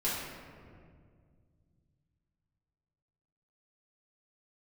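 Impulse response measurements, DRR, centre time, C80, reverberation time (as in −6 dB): −9.5 dB, 101 ms, 2.0 dB, 2.0 s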